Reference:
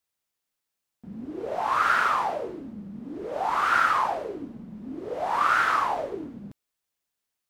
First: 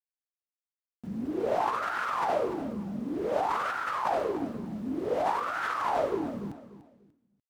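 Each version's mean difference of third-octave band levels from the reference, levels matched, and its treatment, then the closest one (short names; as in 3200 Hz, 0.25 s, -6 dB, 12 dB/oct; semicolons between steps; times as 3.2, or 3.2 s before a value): 6.5 dB: HPF 43 Hz; negative-ratio compressor -29 dBFS, ratio -1; sample gate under -53 dBFS; on a send: feedback echo 0.294 s, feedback 29%, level -14 dB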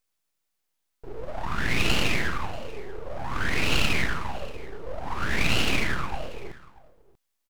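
12.0 dB: tracing distortion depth 0.071 ms; compressor 1.5:1, threshold -29 dBFS, peak gain reduction 4.5 dB; full-wave rectifier; echo 0.637 s -21 dB; gain +5.5 dB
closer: first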